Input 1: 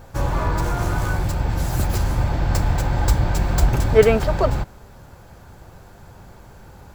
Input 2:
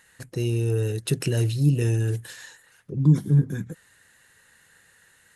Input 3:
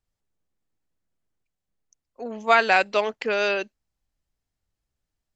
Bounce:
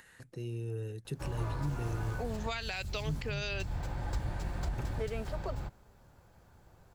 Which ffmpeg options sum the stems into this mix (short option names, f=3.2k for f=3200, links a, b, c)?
-filter_complex "[0:a]acrossover=split=6400[a][b];[b]acompressor=threshold=-42dB:ratio=4:attack=1:release=60[c];[a][c]amix=inputs=2:normalize=0,adelay=1050,volume=-16.5dB[d];[1:a]highshelf=f=4k:g=-7.5,acompressor=mode=upward:threshold=-32dB:ratio=2.5,volume=-14dB[e];[2:a]volume=-1.5dB[f];[d][e][f]amix=inputs=3:normalize=0,acrossover=split=150|3000[g][h][i];[h]acompressor=threshold=-35dB:ratio=6[j];[g][j][i]amix=inputs=3:normalize=0,alimiter=level_in=0.5dB:limit=-24dB:level=0:latency=1:release=108,volume=-0.5dB"